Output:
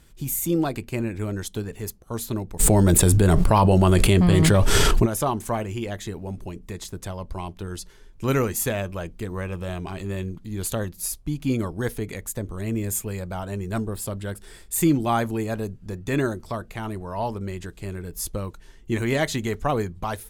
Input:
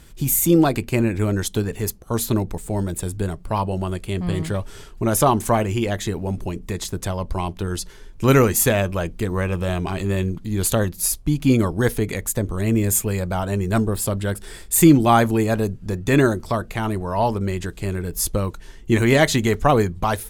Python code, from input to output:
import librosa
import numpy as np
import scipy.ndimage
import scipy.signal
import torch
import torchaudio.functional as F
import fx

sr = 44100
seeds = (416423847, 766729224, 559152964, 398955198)

y = fx.env_flatten(x, sr, amount_pct=100, at=(2.59, 5.05), fade=0.02)
y = y * 10.0 ** (-7.5 / 20.0)